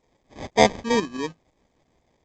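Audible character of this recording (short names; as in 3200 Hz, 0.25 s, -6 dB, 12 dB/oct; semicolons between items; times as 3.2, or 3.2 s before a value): aliases and images of a low sample rate 1400 Hz, jitter 0%; tremolo saw up 6 Hz, depth 60%; A-law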